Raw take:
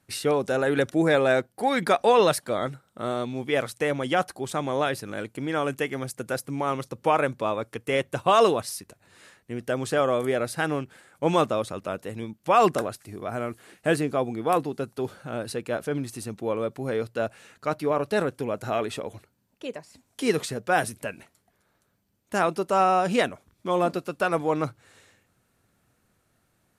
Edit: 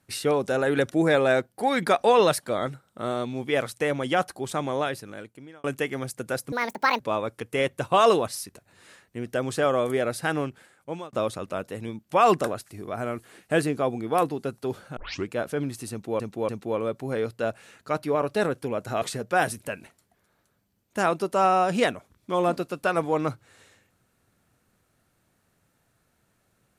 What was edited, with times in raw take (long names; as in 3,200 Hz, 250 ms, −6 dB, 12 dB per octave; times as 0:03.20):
0:04.63–0:05.64: fade out
0:06.52–0:07.34: play speed 172%
0:10.82–0:11.47: fade out
0:15.31: tape start 0.32 s
0:16.25–0:16.54: repeat, 3 plays
0:18.78–0:20.38: remove